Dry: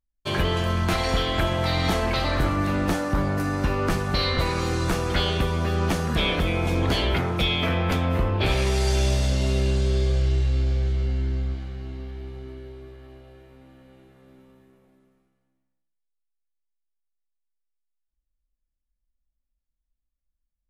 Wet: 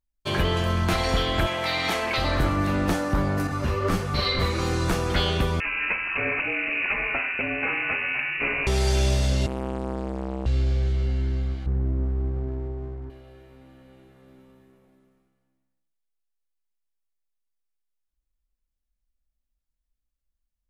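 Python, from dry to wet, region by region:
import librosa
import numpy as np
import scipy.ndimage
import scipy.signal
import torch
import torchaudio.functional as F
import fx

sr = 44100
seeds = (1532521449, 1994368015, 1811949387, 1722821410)

y = fx.chain(x, sr, fx.highpass(hz=490.0, slope=6),
    fx.peak_eq(hz=2300.0, db=5.5, octaves=0.58), at=(1.46, 2.18))
y = fx.chain(y, sr, fx.doubler(ms=39.0, db=-2.5),
    fx.ensemble(), at=(3.47, 4.59))
y = fx.chain(y, sr, fx.highpass(hz=200.0, slope=12),
    fx.freq_invert(carrier_hz=2800), at=(5.6, 8.67))
y = fx.chain(y, sr, fx.highpass(hz=51.0, slope=12),
    fx.band_shelf(hz=4400.0, db=-9.0, octaves=1.3),
    fx.transformer_sat(knee_hz=590.0), at=(9.46, 10.46))
y = fx.chain(y, sr, fx.lowpass(hz=1600.0, slope=24),
    fx.low_shelf(hz=410.0, db=11.0),
    fx.running_max(window=17), at=(11.66, 13.1))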